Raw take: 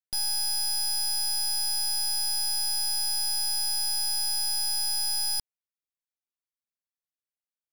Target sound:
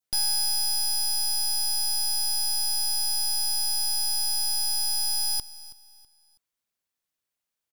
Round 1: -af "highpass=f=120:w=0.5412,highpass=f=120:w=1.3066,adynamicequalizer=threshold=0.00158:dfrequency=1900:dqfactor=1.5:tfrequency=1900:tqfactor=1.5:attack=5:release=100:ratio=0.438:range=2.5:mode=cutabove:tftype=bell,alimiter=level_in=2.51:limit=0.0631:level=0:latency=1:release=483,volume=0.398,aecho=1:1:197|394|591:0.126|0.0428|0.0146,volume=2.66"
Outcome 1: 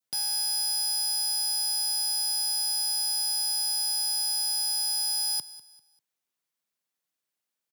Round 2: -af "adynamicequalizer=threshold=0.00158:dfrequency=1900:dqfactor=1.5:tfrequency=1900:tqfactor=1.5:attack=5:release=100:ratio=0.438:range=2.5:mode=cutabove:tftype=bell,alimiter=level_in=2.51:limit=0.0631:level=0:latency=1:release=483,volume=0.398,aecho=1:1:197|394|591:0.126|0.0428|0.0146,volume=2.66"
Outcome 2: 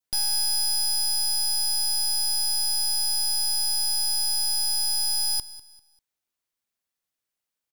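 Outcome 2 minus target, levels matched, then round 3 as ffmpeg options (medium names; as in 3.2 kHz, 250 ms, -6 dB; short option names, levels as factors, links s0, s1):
echo 128 ms early
-af "adynamicequalizer=threshold=0.00158:dfrequency=1900:dqfactor=1.5:tfrequency=1900:tqfactor=1.5:attack=5:release=100:ratio=0.438:range=2.5:mode=cutabove:tftype=bell,alimiter=level_in=2.51:limit=0.0631:level=0:latency=1:release=483,volume=0.398,aecho=1:1:325|650|975:0.126|0.0428|0.0146,volume=2.66"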